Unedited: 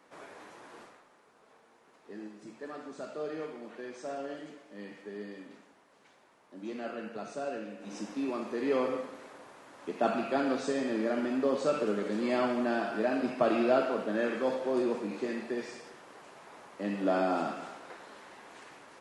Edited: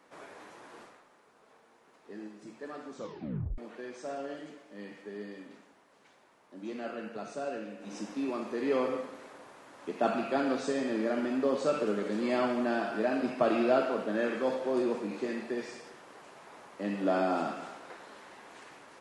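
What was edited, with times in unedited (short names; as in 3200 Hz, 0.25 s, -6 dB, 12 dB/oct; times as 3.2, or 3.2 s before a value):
2.93 tape stop 0.65 s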